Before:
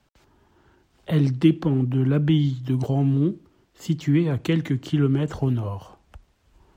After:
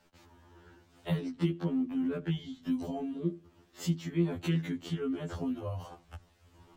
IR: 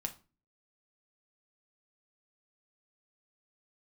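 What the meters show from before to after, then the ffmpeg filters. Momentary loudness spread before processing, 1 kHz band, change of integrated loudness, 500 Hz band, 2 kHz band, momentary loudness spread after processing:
8 LU, -8.0 dB, -11.5 dB, -9.5 dB, -9.0 dB, 14 LU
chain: -af "acompressor=threshold=0.0141:ratio=2,afftfilt=real='re*2*eq(mod(b,4),0)':imag='im*2*eq(mod(b,4),0)':win_size=2048:overlap=0.75,volume=1.41"

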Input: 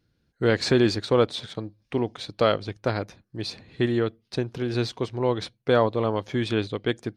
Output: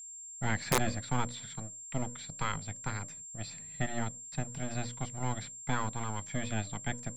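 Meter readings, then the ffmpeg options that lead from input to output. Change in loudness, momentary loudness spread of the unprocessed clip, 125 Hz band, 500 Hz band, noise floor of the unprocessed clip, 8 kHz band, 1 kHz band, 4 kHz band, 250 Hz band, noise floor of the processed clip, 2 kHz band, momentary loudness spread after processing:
-10.5 dB, 12 LU, -6.5 dB, -18.5 dB, -72 dBFS, +8.0 dB, -6.0 dB, -12.0 dB, -12.5 dB, -47 dBFS, -6.5 dB, 10 LU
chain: -filter_complex "[0:a]bandreject=f=60:t=h:w=6,bandreject=f=120:t=h:w=6,bandreject=f=180:t=h:w=6,bandreject=f=240:t=h:w=6,bandreject=f=300:t=h:w=6,agate=range=0.2:threshold=0.00251:ratio=16:detection=peak,acrossover=split=3000[s0][s1];[s1]acompressor=threshold=0.00794:ratio=4:attack=1:release=60[s2];[s0][s2]amix=inputs=2:normalize=0,equalizer=f=160:t=o:w=0.33:g=10,equalizer=f=250:t=o:w=0.33:g=7,equalizer=f=630:t=o:w=0.33:g=-10,equalizer=f=2000:t=o:w=0.33:g=7,equalizer=f=8000:t=o:w=0.33:g=8,acrossover=split=240|810|1700[s3][s4][s5][s6];[s4]aeval=exprs='abs(val(0))':c=same[s7];[s3][s7][s5][s6]amix=inputs=4:normalize=0,aeval=exprs='val(0)+0.0178*sin(2*PI*7400*n/s)':c=same,aeval=exprs='(mod(2.51*val(0)+1,2)-1)/2.51':c=same,volume=0.355"

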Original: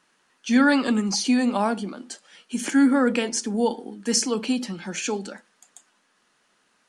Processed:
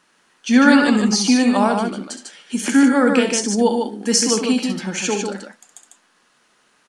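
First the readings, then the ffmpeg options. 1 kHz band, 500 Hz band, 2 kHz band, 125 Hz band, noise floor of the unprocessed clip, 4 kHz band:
+6.5 dB, +6.5 dB, +6.5 dB, no reading, -67 dBFS, +6.5 dB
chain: -af "aecho=1:1:67.06|148.7:0.355|0.562,volume=1.78"

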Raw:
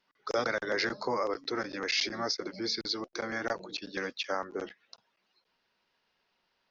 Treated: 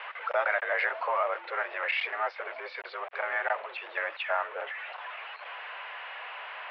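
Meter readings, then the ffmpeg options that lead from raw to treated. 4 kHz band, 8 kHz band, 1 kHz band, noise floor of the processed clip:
-8.0 dB, no reading, +6.0 dB, -46 dBFS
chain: -af "aeval=exprs='val(0)+0.5*0.0178*sgn(val(0))':c=same,highpass=f=560:t=q:w=0.5412,highpass=f=560:t=q:w=1.307,lowpass=f=2700:t=q:w=0.5176,lowpass=f=2700:t=q:w=0.7071,lowpass=f=2700:t=q:w=1.932,afreqshift=64,volume=1.5"

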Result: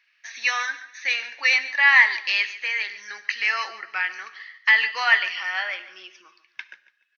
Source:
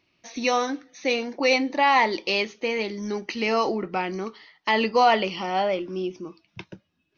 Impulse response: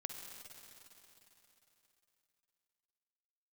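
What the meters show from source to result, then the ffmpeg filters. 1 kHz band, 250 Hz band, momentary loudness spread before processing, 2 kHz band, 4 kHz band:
-7.5 dB, under -30 dB, 14 LU, +9.5 dB, +2.0 dB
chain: -filter_complex "[0:a]highpass=f=1700:t=q:w=6.7,aecho=1:1:144|288|432:0.158|0.046|0.0133,asplit=2[s0][s1];[1:a]atrim=start_sample=2205,atrim=end_sample=6174[s2];[s1][s2]afir=irnorm=-1:irlink=0,volume=0.668[s3];[s0][s3]amix=inputs=2:normalize=0,volume=0.631"

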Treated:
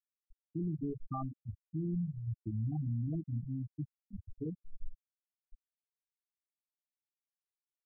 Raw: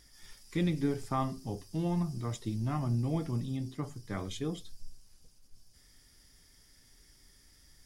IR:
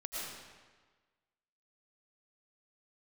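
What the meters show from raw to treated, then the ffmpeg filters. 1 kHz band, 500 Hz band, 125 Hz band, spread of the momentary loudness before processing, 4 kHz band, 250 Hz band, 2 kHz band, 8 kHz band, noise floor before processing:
-9.5 dB, -9.5 dB, -3.0 dB, 8 LU, under -35 dB, -5.0 dB, under -35 dB, under -30 dB, -62 dBFS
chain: -af "afftfilt=real='re*gte(hypot(re,im),0.126)':imag='im*gte(hypot(re,im),0.126)':win_size=1024:overlap=0.75,lowshelf=f=91:g=6,alimiter=level_in=1.5:limit=0.0631:level=0:latency=1:release=62,volume=0.668,volume=0.794"

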